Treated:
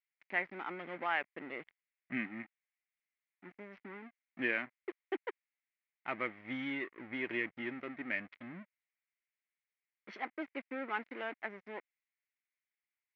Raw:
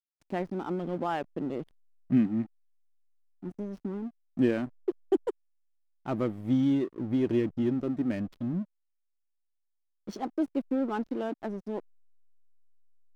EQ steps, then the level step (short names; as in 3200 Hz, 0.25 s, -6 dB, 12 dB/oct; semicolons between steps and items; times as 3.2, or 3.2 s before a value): band-pass 2100 Hz, Q 5.4; air absorption 210 m; +17.0 dB